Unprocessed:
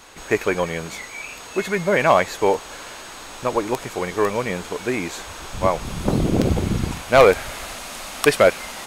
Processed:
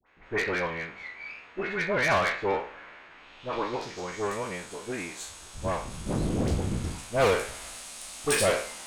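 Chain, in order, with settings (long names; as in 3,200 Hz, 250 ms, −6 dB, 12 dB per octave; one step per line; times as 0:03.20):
peak hold with a decay on every bin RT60 0.47 s
low-pass filter sweep 2,100 Hz → 9,400 Hz, 0:03.04–0:04.38
tube saturation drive 12 dB, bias 0.55
all-pass dispersion highs, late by 66 ms, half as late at 1,100 Hz
multiband upward and downward expander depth 40%
level −8 dB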